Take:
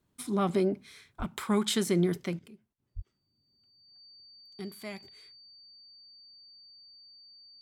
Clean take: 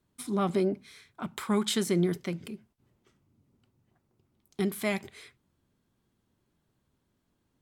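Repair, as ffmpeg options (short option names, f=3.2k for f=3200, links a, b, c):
-filter_complex "[0:a]bandreject=f=4.6k:w=30,asplit=3[a][b][c];[a]afade=t=out:st=1.18:d=0.02[d];[b]highpass=f=140:w=0.5412,highpass=f=140:w=1.3066,afade=t=in:st=1.18:d=0.02,afade=t=out:st=1.3:d=0.02[e];[c]afade=t=in:st=1.3:d=0.02[f];[d][e][f]amix=inputs=3:normalize=0,asplit=3[g][h][i];[g]afade=t=out:st=2.95:d=0.02[j];[h]highpass=f=140:w=0.5412,highpass=f=140:w=1.3066,afade=t=in:st=2.95:d=0.02,afade=t=out:st=3.07:d=0.02[k];[i]afade=t=in:st=3.07:d=0.02[l];[j][k][l]amix=inputs=3:normalize=0,asetnsamples=n=441:p=0,asendcmd='2.39 volume volume 11.5dB',volume=0dB"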